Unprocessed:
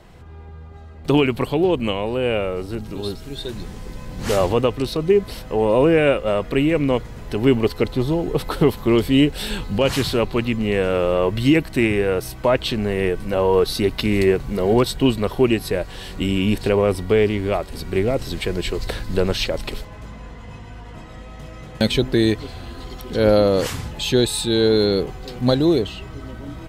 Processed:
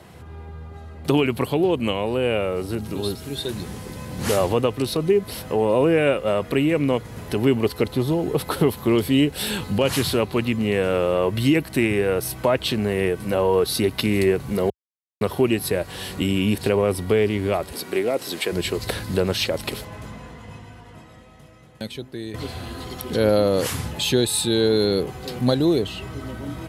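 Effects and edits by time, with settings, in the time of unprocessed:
14.70–15.21 s: mute
17.72–18.52 s: high-pass 310 Hz
19.99–22.34 s: fade out quadratic, to -18.5 dB
whole clip: high-pass 69 Hz 24 dB/octave; peaking EQ 11 kHz +9.5 dB 0.48 oct; compression 1.5:1, threshold -26 dBFS; trim +2.5 dB

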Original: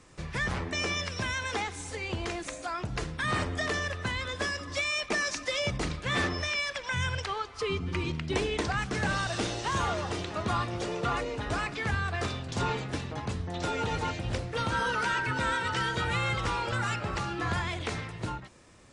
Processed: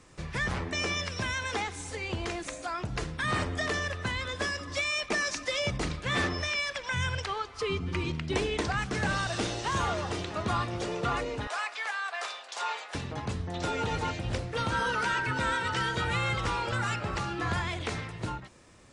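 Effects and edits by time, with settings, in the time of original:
11.47–12.95 s: high-pass 650 Hz 24 dB/octave

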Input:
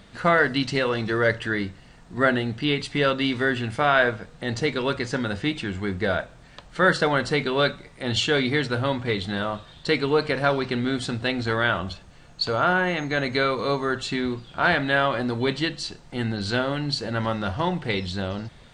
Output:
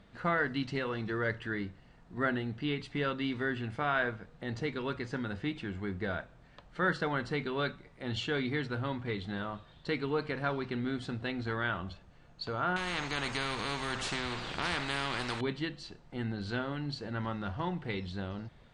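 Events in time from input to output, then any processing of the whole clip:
12.76–15.41 s: spectrum-flattening compressor 4:1
whole clip: low-pass 2.2 kHz 6 dB/octave; dynamic bell 580 Hz, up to -6 dB, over -37 dBFS, Q 2.2; trim -8.5 dB

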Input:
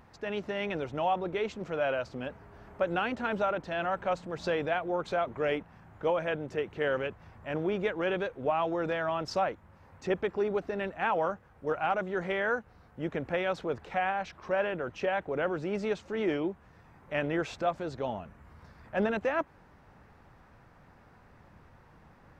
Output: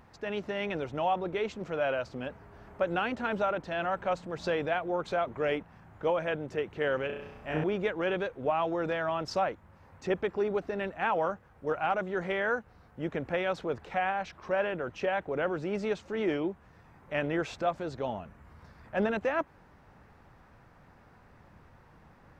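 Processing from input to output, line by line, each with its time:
7.06–7.64 s: flutter echo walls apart 5.6 m, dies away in 0.83 s

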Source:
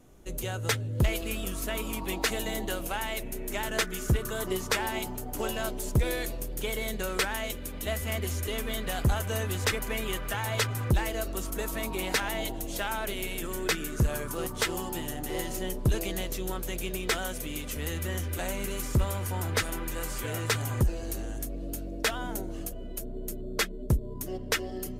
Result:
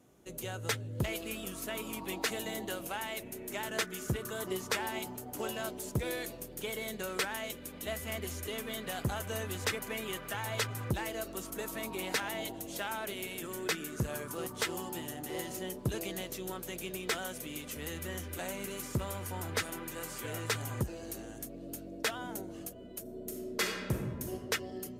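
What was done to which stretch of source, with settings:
23.01–24.34 s: reverb throw, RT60 1.5 s, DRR 0.5 dB
whole clip: high-pass 110 Hz 12 dB/octave; trim -5 dB

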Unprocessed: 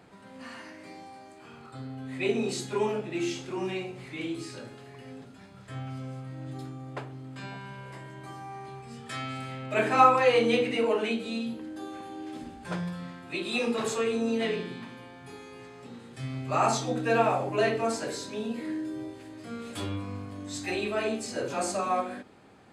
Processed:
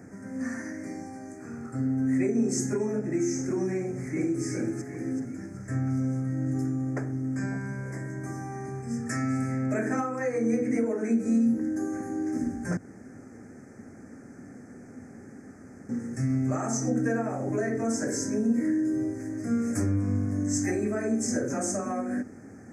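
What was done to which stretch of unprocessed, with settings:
3.78–4.43 s: echo throw 380 ms, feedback 45%, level -6 dB
12.77–15.89 s: room tone
whole clip: elliptic band-stop 1.8–5.7 kHz, stop band 80 dB; compression 4:1, threshold -34 dBFS; fifteen-band graphic EQ 100 Hz +7 dB, 250 Hz +10 dB, 1 kHz -11 dB, 2.5 kHz +11 dB, 6.3 kHz +7 dB; trim +5.5 dB

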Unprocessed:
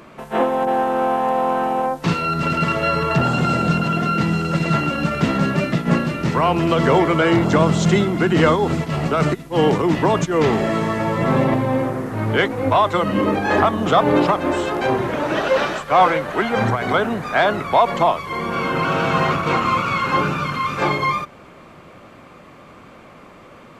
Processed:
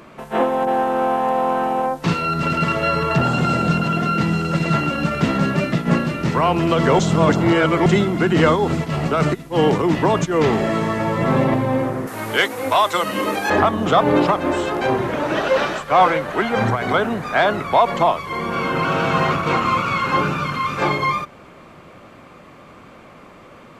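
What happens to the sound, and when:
6.99–7.86 s: reverse
12.07–13.50 s: RIAA curve recording

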